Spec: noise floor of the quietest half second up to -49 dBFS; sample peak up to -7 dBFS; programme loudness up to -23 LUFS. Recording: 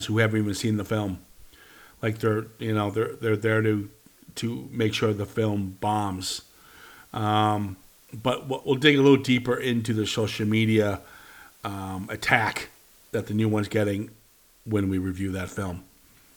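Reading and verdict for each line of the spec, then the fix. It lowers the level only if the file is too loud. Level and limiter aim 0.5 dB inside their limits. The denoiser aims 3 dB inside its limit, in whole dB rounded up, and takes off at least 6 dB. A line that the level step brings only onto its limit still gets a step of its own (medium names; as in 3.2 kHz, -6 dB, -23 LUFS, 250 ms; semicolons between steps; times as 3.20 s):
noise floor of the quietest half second -58 dBFS: pass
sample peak -3.5 dBFS: fail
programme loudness -25.5 LUFS: pass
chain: peak limiter -7.5 dBFS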